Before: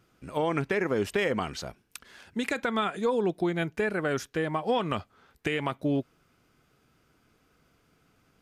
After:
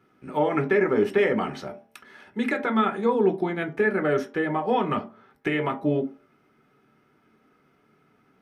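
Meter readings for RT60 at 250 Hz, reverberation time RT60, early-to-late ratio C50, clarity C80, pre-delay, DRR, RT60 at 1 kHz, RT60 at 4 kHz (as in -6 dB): 0.40 s, 0.45 s, 14.5 dB, 18.5 dB, 3 ms, 2.5 dB, 0.45 s, 0.20 s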